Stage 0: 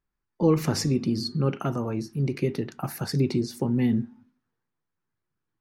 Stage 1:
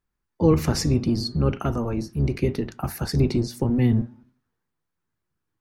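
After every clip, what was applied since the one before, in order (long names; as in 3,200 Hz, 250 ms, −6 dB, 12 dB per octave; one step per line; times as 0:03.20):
sub-octave generator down 1 octave, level −4 dB
level +2 dB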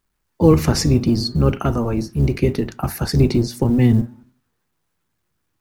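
log-companded quantiser 8 bits
level +5.5 dB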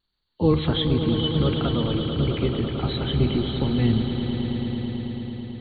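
hearing-aid frequency compression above 2,700 Hz 4 to 1
pitch vibrato 1.5 Hz 30 cents
echo that builds up and dies away 110 ms, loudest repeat 5, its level −11 dB
level −7 dB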